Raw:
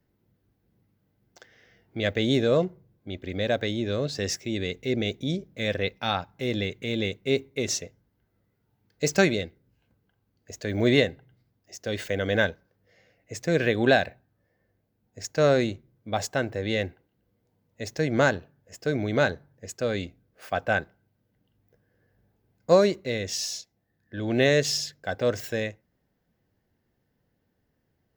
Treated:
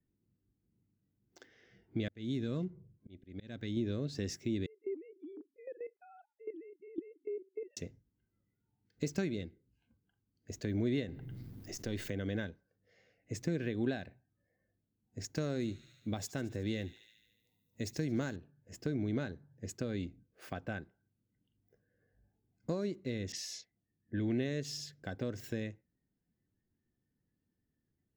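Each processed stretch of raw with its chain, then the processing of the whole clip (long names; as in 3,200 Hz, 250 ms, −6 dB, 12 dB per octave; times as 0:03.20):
0:02.08–0:03.77: dynamic equaliser 570 Hz, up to −7 dB, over −34 dBFS, Q 0.9 + volume swells 593 ms
0:04.66–0:07.77: three sine waves on the formant tracks + drawn EQ curve 110 Hz 0 dB, 840 Hz −7 dB, 5,500 Hz −27 dB + output level in coarse steps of 16 dB
0:11.08–0:12.10: gain on one half-wave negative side −3 dB + high-shelf EQ 12,000 Hz +5.5 dB + envelope flattener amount 50%
0:15.35–0:18.36: high-shelf EQ 5,700 Hz +10.5 dB + delay with a high-pass on its return 73 ms, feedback 66%, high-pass 2,500 Hz, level −15.5 dB
0:23.32–0:24.38: low-pass that shuts in the quiet parts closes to 620 Hz, open at −28 dBFS + parametric band 2,000 Hz +11 dB 0.37 octaves
whole clip: downward compressor 3 to 1, threshold −34 dBFS; noise reduction from a noise print of the clip's start 11 dB; low shelf with overshoot 420 Hz +8 dB, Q 1.5; level −7 dB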